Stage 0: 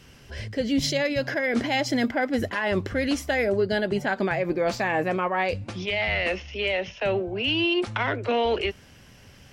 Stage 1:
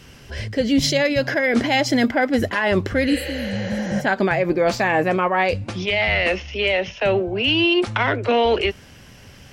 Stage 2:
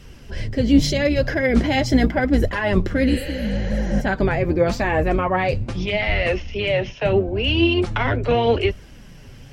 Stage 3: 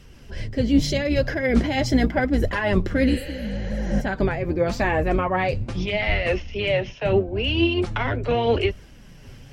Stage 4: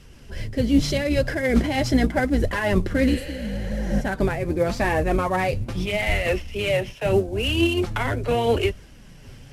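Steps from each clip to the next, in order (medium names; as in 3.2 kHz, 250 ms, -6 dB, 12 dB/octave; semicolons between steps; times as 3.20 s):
spectral replace 3.12–3.99 s, 350–7200 Hz both; trim +6 dB
octave divider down 2 oct, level -1 dB; bass shelf 480 Hz +6.5 dB; flange 0.8 Hz, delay 1.4 ms, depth 7.2 ms, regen +44%
random flutter of the level, depth 55%
CVSD coder 64 kbps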